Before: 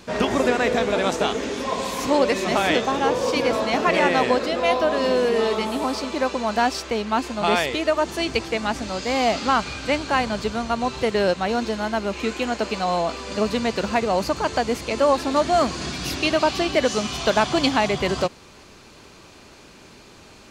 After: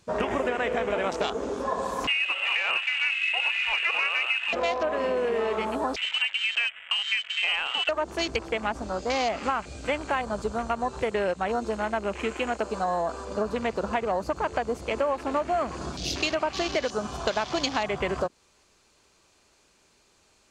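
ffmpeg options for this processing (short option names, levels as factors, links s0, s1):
-filter_complex "[0:a]asettb=1/sr,asplit=3[s0][s1][s2];[s0]atrim=end=2.074[s3];[s1]atrim=start=2.07:end=4.53,asetpts=PTS-STARTPTS,afade=t=in:d=0.004:c=qsin,afade=t=out:st=2.456:d=0.004:c=qsin,lowpass=f=2600:t=q:w=0.5098,lowpass=f=2600:t=q:w=0.6013,lowpass=f=2600:t=q:w=0.9,lowpass=f=2600:t=q:w=2.563,afreqshift=-3100[s4];[s2]atrim=start=4.526[s5];[s3][s4]acrossfade=d=0.004:c1=hsin:c2=qsin[s6];[s6][s5]acrossfade=d=0.004:c1=qsin:c2=hsin,asettb=1/sr,asplit=3[s7][s8][s9];[s7]atrim=end=5.964[s10];[s8]atrim=start=5.96:end=7.89,asetpts=PTS-STARTPTS,afade=t=in:d=0.004:c=qsin,afade=t=out:st=1.926:d=0.004:c=qsin,lowpass=f=2800:t=q:w=0.5098,lowpass=f=2800:t=q:w=0.6013,lowpass=f=2800:t=q:w=0.9,lowpass=f=2800:t=q:w=2.563,afreqshift=-3300[s11];[s9]atrim=start=7.886[s12];[s10][s11]acrossfade=d=0.004:c1=hsin:c2=qsin[s13];[s13][s12]acrossfade=d=0.004:c1=qsin:c2=hsin,asettb=1/sr,asplit=3[s14][s15][s16];[s14]atrim=end=9.434[s17];[s15]atrim=start=9.43:end=13.25,asetpts=PTS-STARTPTS,afade=t=in:d=0.004:c=qsin,afade=t=out:st=3.816:d=0.004:c=qsin,equalizer=f=8300:t=o:w=0.85:g=6[s18];[s16]atrim=start=13.246[s19];[s17][s18]acrossfade=d=0.004:c1=hsin:c2=qsin[s20];[s20][s19]acrossfade=d=0.004:c1=qsin:c2=hsin,afwtdn=0.0316,equalizer=f=125:t=o:w=1:g=-5,equalizer=f=250:t=o:w=1:g=-5,equalizer=f=8000:t=o:w=1:g=8,acompressor=threshold=0.0708:ratio=6"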